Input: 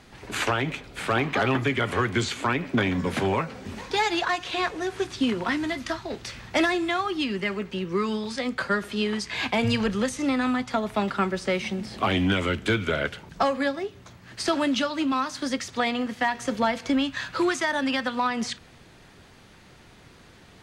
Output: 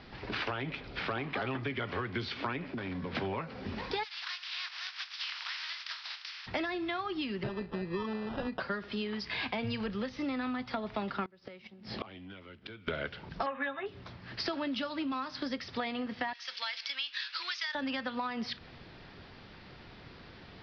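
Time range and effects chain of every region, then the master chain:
2.68–3.15 CVSD 32 kbps + LPF 4400 Hz + compressor 4:1, threshold -34 dBFS
4.03–6.46 spectral contrast lowered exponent 0.4 + Bessel high-pass 1700 Hz, order 6 + compressor 2:1, threshold -38 dBFS
7.43–8.6 sample-rate reducer 2200 Hz + running mean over 6 samples
11.25–12.88 HPF 73 Hz + flipped gate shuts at -21 dBFS, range -25 dB
13.46–13.86 rippled Chebyshev low-pass 3800 Hz, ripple 9 dB + bell 1700 Hz +14.5 dB 1.1 oct + comb 7.5 ms, depth 77%
16.33–17.75 Bessel high-pass 2400 Hz + tilt +3.5 dB/oct
whole clip: steep low-pass 5400 Hz 96 dB/oct; compressor 4:1, threshold -34 dBFS

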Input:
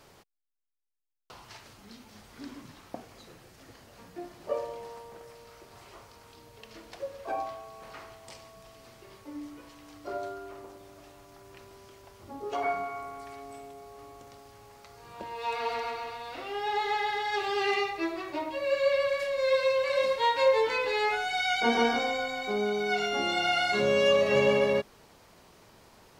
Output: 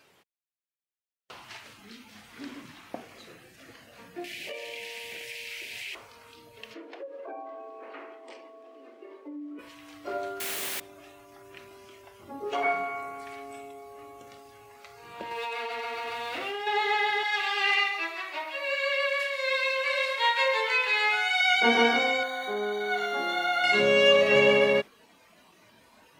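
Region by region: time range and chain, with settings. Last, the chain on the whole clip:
4.24–5.95 resonant high shelf 1700 Hz +11.5 dB, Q 3 + compressor 4:1, threshold -40 dBFS
6.74–9.59 Chebyshev high-pass 270 Hz, order 5 + tilt -4 dB/oct + compressor 4:1, threshold -40 dBFS
10.4–10.8 HPF 300 Hz + requantised 6-bit, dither triangular
15.31–16.67 G.711 law mismatch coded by mu + compressor 12:1, threshold -33 dBFS
17.23–21.41 HPF 850 Hz + echo 0.137 s -9 dB
22.23–23.64 zero-crossing step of -36 dBFS + running mean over 17 samples + tilt +4 dB/oct
whole clip: weighting filter D; spectral noise reduction 9 dB; bell 4800 Hz -12 dB 1.7 oct; gain +3 dB

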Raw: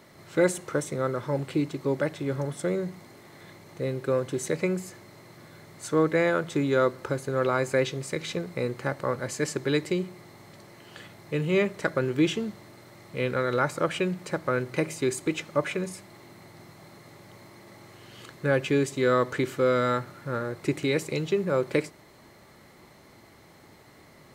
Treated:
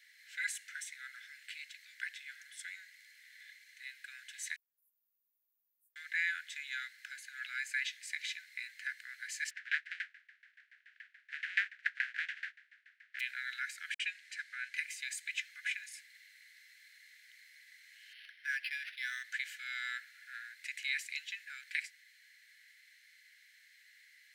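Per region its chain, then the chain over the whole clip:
4.56–5.96 inverse Chebyshev band-stop 1100–4800 Hz, stop band 80 dB + compressor 1.5:1, threshold -50 dBFS
9.49–13.19 spectral contrast lowered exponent 0.21 + LFO low-pass saw down 7 Hz 640–1800 Hz
13.94–14.74 LPF 10000 Hz + dispersion highs, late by 58 ms, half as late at 590 Hz
18.13–19.24 HPF 270 Hz + high shelf 4800 Hz +4 dB + decimation joined by straight lines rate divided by 6×
whole clip: steep high-pass 1600 Hz 96 dB/oct; high shelf 3000 Hz -10.5 dB; gain +2 dB

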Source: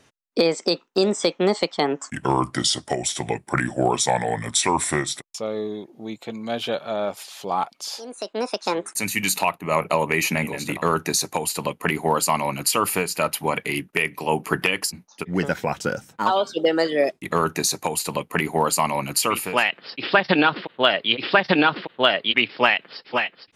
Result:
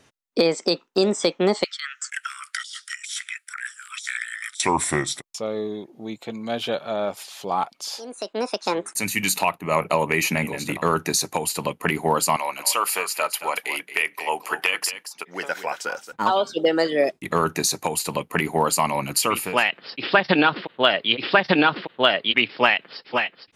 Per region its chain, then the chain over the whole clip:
1.64–4.6 steep high-pass 1300 Hz 96 dB/oct + negative-ratio compressor -32 dBFS
12.36–16.12 HPF 630 Hz + echo 0.225 s -11.5 dB
whole clip: dry

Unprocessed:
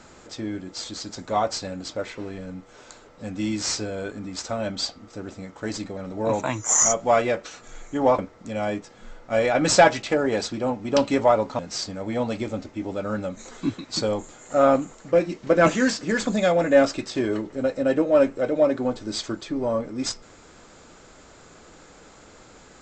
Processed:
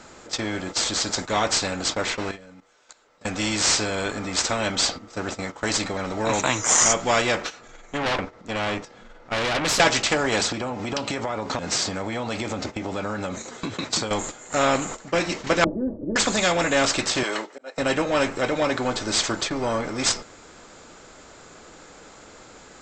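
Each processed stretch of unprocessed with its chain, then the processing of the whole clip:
2.31–3.25 low shelf 500 Hz -10 dB + level quantiser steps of 16 dB
7.42–9.8 tube stage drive 25 dB, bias 0.7 + upward compressor, threshold -42 dBFS + air absorption 72 m
10.41–14.11 HPF 79 Hz + low shelf 350 Hz +6 dB + compressor 8:1, threshold -29 dBFS
15.64–16.16 inverse Chebyshev low-pass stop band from 2500 Hz, stop band 80 dB + comb 3.4 ms, depth 53%
17.23–17.78 HPF 620 Hz + auto swell 0.394 s
whole clip: gate -38 dBFS, range -12 dB; low shelf 240 Hz -5 dB; spectral compressor 2:1; gain +1.5 dB

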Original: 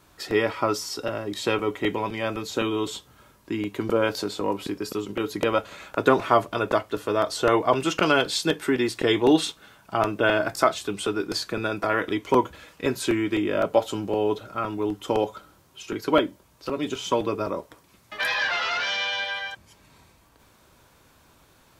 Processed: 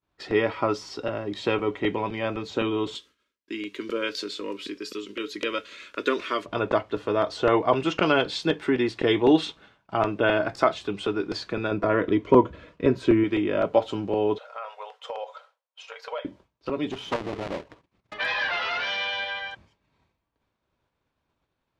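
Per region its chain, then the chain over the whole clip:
2.95–6.46 tilt +3 dB/oct + fixed phaser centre 320 Hz, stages 4
11.71–13.24 Butterworth band-stop 810 Hz, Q 6 + tilt shelf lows +5.5 dB, about 1200 Hz
14.38–16.25 brick-wall FIR high-pass 450 Hz + compressor 3:1, threshold -31 dBFS
16.91–18.14 half-waves squared off + level quantiser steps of 9 dB + core saturation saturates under 1000 Hz
whole clip: LPF 3600 Hz 12 dB/oct; expander -45 dBFS; bell 1400 Hz -2.5 dB

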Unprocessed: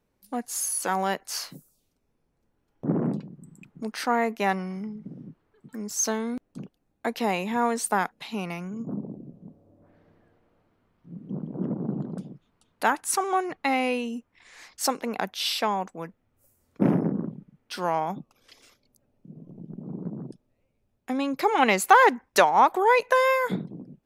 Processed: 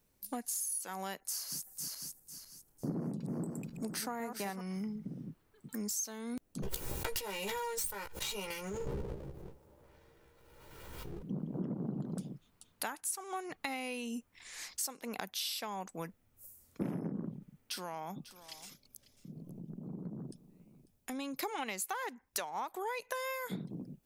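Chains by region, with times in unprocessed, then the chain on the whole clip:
1.2–4.61 regenerating reverse delay 0.25 s, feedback 55%, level -6.5 dB + bell 3000 Hz -6.5 dB 1.8 oct
6.62–11.23 minimum comb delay 2.1 ms + doubler 15 ms -4.5 dB + backwards sustainer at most 29 dB/s
17.37–21.43 compressor 2:1, threshold -41 dBFS + echo 0.545 s -17.5 dB
whole clip: pre-emphasis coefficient 0.8; compressor 8:1, threshold -45 dBFS; low shelf 170 Hz +6 dB; gain +9 dB

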